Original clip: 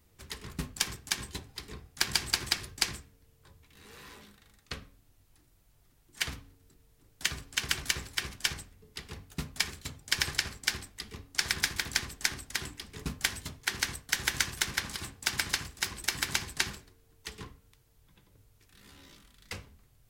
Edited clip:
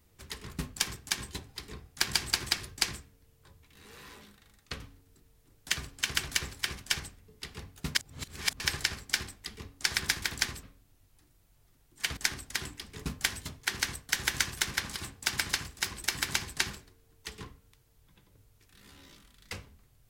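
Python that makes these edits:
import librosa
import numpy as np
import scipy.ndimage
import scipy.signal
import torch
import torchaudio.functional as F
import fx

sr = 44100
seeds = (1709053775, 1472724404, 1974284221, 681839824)

y = fx.edit(x, sr, fx.move(start_s=4.8, length_s=1.54, to_s=12.17),
    fx.reverse_span(start_s=9.49, length_s=0.65), tone=tone)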